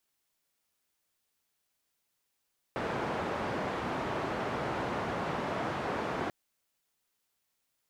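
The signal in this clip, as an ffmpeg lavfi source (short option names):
-f lavfi -i "anoisesrc=c=white:d=3.54:r=44100:seed=1,highpass=f=90,lowpass=f=1000,volume=-15.8dB"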